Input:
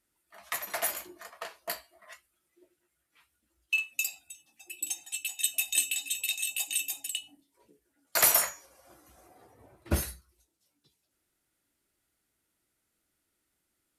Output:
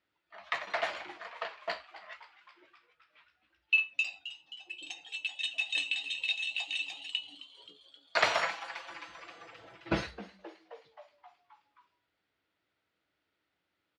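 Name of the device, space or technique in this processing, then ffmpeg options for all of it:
frequency-shifting delay pedal into a guitar cabinet: -filter_complex "[0:a]asplit=8[s0][s1][s2][s3][s4][s5][s6][s7];[s1]adelay=264,afreqshift=130,volume=0.158[s8];[s2]adelay=528,afreqshift=260,volume=0.101[s9];[s3]adelay=792,afreqshift=390,volume=0.0646[s10];[s4]adelay=1056,afreqshift=520,volume=0.0417[s11];[s5]adelay=1320,afreqshift=650,volume=0.0266[s12];[s6]adelay=1584,afreqshift=780,volume=0.017[s13];[s7]adelay=1848,afreqshift=910,volume=0.0108[s14];[s0][s8][s9][s10][s11][s12][s13][s14]amix=inputs=8:normalize=0,highpass=110,equalizer=f=140:t=q:w=4:g=-6,equalizer=f=230:t=q:w=4:g=-9,equalizer=f=360:t=q:w=4:g=-5,lowpass=f=4000:w=0.5412,lowpass=f=4000:w=1.3066,asettb=1/sr,asplit=3[s15][s16][s17];[s15]atrim=end=8.424[s18];[s16]atrim=start=8.42:end=10.07,asetpts=PTS-STARTPTS,afade=t=in:d=0.004:c=qsin,afade=t=out:st=1.646:d=0.004:c=qsin,aecho=1:1:6:0.85,atrim=end_sample=72765[s19];[s17]atrim=start=10.066[s20];[s18][s19]acrossfade=d=0.004:c1=hsin:c2=qsin[s21];[s21][s20]acrossfade=d=0.004:c1=qsin:c2=hsin,volume=1.33"

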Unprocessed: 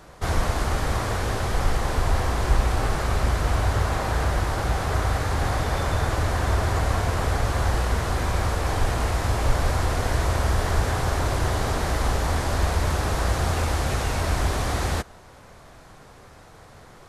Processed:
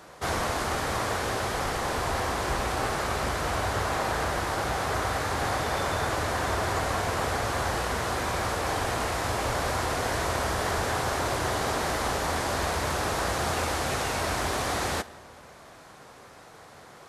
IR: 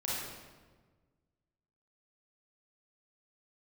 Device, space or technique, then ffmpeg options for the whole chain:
saturated reverb return: -filter_complex "[0:a]asplit=2[s0][s1];[1:a]atrim=start_sample=2205[s2];[s1][s2]afir=irnorm=-1:irlink=0,asoftclip=type=tanh:threshold=0.0891,volume=0.126[s3];[s0][s3]amix=inputs=2:normalize=0,highpass=f=280:p=1"

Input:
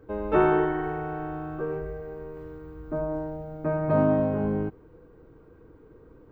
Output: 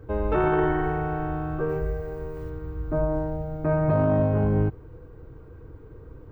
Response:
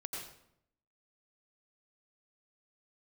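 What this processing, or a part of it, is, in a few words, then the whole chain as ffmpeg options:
car stereo with a boomy subwoofer: -filter_complex "[0:a]asettb=1/sr,asplit=3[s0][s1][s2];[s0]atrim=end=1.694[s3];[s1]atrim=start=1.69:end=2.5,asetpts=PTS-STARTPTS,afade=t=in:d=0.004:c=qsin,afade=t=out:st=0.806:d=0.004:c=qsin,bass=f=250:g=-1,treble=f=4000:g=8[s4];[s2]atrim=start=2.496[s5];[s3][s4]acrossfade=d=0.004:c1=hsin:c2=qsin[s6];[s6][s5]acrossfade=d=0.004:c1=qsin:c2=hsin,lowshelf=f=150:t=q:w=1.5:g=7.5,alimiter=limit=0.119:level=0:latency=1:release=10,volume=1.58"

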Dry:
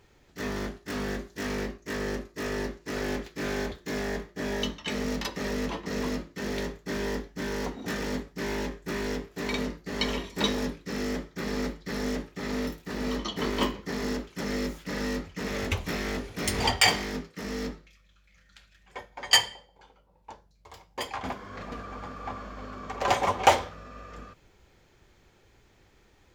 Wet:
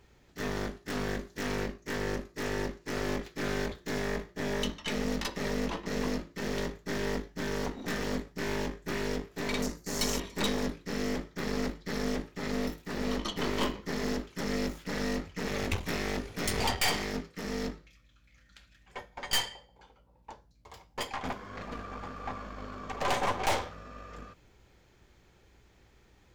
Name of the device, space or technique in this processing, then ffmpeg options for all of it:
valve amplifier with mains hum: -filter_complex "[0:a]asettb=1/sr,asplit=3[s0][s1][s2];[s0]atrim=end=9.624[s3];[s1]atrim=start=9.62:end=10.2,asetpts=PTS-STARTPTS,afade=t=in:d=0.004:c=qsin,afade=t=out:st=0.576:d=0.004:c=qsin,highshelf=f=4700:t=q:w=1.5:g=12.5[s4];[s2]atrim=start=10.196[s5];[s3][s4]acrossfade=d=0.004:c1=hsin:c2=qsin[s6];[s6][s5]acrossfade=d=0.004:c1=qsin:c2=hsin,aeval=exprs='(tanh(22.4*val(0)+0.75)-tanh(0.75))/22.4':c=same,aeval=exprs='val(0)+0.000355*(sin(2*PI*60*n/s)+sin(2*PI*2*60*n/s)/2+sin(2*PI*3*60*n/s)/3+sin(2*PI*4*60*n/s)/4+sin(2*PI*5*60*n/s)/5)':c=same,volume=1.33"

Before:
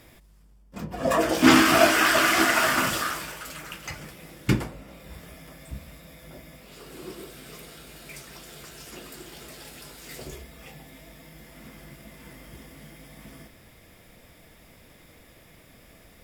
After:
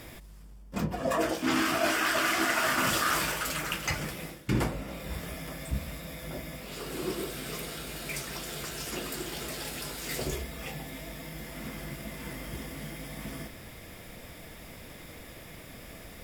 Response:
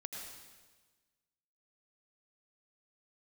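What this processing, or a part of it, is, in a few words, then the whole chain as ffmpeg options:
compression on the reversed sound: -af "areverse,acompressor=threshold=0.0316:ratio=20,areverse,volume=2.11"

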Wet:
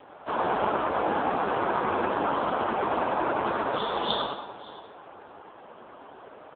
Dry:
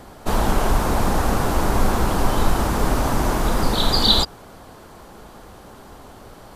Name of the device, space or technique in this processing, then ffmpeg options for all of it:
satellite phone: -filter_complex "[0:a]asettb=1/sr,asplit=3[s0][s1][s2];[s0]atrim=end=2.024[s3];[s1]atrim=start=2.02:end=2.68,asetpts=PTS-STARTPTS,afade=t=in:d=0.004:c=qsin,afade=t=out:st=0.656:d=0.004:c=qsin,highshelf=f=11000:g=-4[s4];[s2]atrim=start=2.676[s5];[s3][s4]acrossfade=d=0.004:c1=hsin:c2=qsin[s6];[s6][s5]acrossfade=d=0.004:c1=qsin:c2=hsin,highpass=360,lowpass=3100,bandreject=f=1900:w=13,asplit=2[s7][s8];[s8]adelay=96,lowpass=f=3200:p=1,volume=0.668,asplit=2[s9][s10];[s10]adelay=96,lowpass=f=3200:p=1,volume=0.53,asplit=2[s11][s12];[s12]adelay=96,lowpass=f=3200:p=1,volume=0.53,asplit=2[s13][s14];[s14]adelay=96,lowpass=f=3200:p=1,volume=0.53,asplit=2[s15][s16];[s16]adelay=96,lowpass=f=3200:p=1,volume=0.53,asplit=2[s17][s18];[s18]adelay=96,lowpass=f=3200:p=1,volume=0.53,asplit=2[s19][s20];[s20]adelay=96,lowpass=f=3200:p=1,volume=0.53[s21];[s7][s9][s11][s13][s15][s17][s19][s21]amix=inputs=8:normalize=0,aecho=1:1:558:0.112" -ar 8000 -c:a libopencore_amrnb -b:a 5150

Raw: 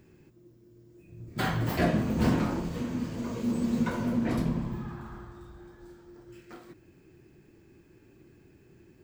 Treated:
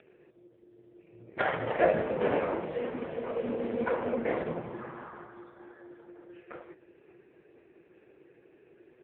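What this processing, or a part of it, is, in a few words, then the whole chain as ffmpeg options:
satellite phone: -af "highpass=390,lowpass=3000,equalizer=f=125:t=o:w=1:g=10,equalizer=f=250:t=o:w=1:g=-5,equalizer=f=500:t=o:w=1:g=11,equalizer=f=2000:t=o:w=1:g=5,aecho=1:1:565:0.1,volume=1.33" -ar 8000 -c:a libopencore_amrnb -b:a 4750

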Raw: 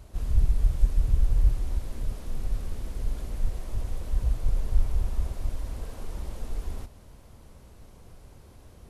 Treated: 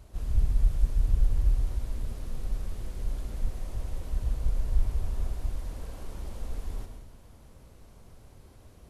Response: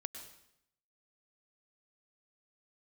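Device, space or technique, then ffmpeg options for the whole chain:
bathroom: -filter_complex "[1:a]atrim=start_sample=2205[s0];[0:a][s0]afir=irnorm=-1:irlink=0"

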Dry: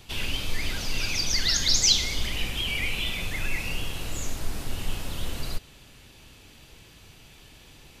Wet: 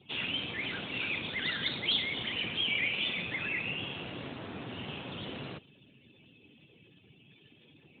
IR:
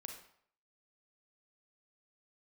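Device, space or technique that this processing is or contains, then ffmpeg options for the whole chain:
mobile call with aggressive noise cancelling: -af "highpass=140,afftdn=nr=24:nf=-51" -ar 8000 -c:a libopencore_amrnb -b:a 12200

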